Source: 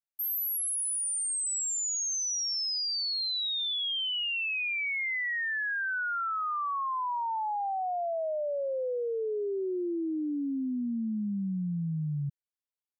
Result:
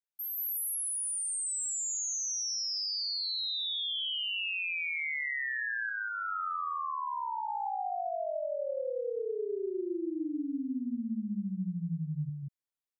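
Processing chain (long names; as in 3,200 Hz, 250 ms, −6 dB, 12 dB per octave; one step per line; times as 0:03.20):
0:05.89–0:07.48: Chebyshev low-pass filter 1,400 Hz, order 4
loudspeakers that aren't time-aligned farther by 46 metres −11 dB, 64 metres −1 dB
level −5.5 dB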